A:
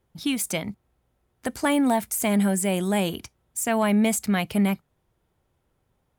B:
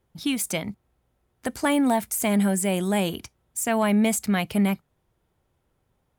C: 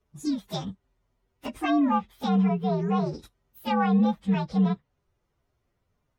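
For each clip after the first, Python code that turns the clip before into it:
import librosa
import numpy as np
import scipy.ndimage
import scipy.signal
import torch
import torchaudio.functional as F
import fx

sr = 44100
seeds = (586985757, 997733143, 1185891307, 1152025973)

y1 = x
y2 = fx.partial_stretch(y1, sr, pct=122)
y2 = fx.env_lowpass_down(y2, sr, base_hz=2100.0, full_db=-21.0)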